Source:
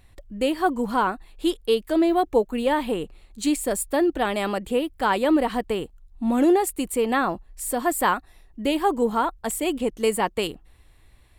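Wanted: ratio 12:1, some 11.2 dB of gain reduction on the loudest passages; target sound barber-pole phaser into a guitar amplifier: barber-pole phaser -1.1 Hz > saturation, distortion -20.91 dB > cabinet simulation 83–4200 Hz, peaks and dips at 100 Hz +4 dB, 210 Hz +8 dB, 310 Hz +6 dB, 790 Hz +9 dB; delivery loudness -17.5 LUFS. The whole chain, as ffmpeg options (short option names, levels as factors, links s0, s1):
-filter_complex "[0:a]acompressor=threshold=0.0501:ratio=12,asplit=2[s0][s1];[s1]afreqshift=-1.1[s2];[s0][s2]amix=inputs=2:normalize=1,asoftclip=threshold=0.0668,highpass=83,equalizer=f=100:t=q:w=4:g=4,equalizer=f=210:t=q:w=4:g=8,equalizer=f=310:t=q:w=4:g=6,equalizer=f=790:t=q:w=4:g=9,lowpass=f=4200:w=0.5412,lowpass=f=4200:w=1.3066,volume=5.31"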